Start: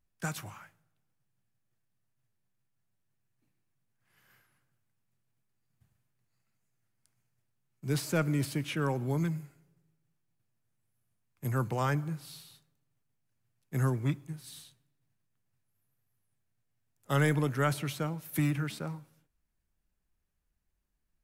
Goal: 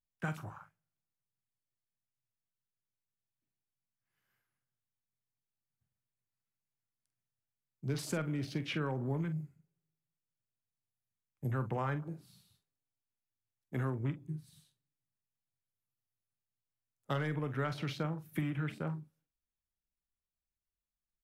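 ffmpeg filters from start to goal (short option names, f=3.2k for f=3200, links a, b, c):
-filter_complex "[0:a]afwtdn=0.00501,asettb=1/sr,asplit=3[a][b][c];[a]atrim=end=12.024[d];[b]atrim=start=12.02:end=14.04,asetpts=PTS-STARTPTS,afade=t=in:d=0.004:c=qsin,afade=t=out:st=2.016:d=0.004:c=qsin,equalizer=f=150:w=6:g=-13.5[e];[c]atrim=start=14.036[f];[d][e]acrossfade=d=0.004:c1=hsin:c2=qsin[g];[g][f]acrossfade=d=0.004:c1=qsin:c2=hsin,acompressor=threshold=-31dB:ratio=10,asplit=2[h][i];[i]adelay=45,volume=-12dB[j];[h][j]amix=inputs=2:normalize=0"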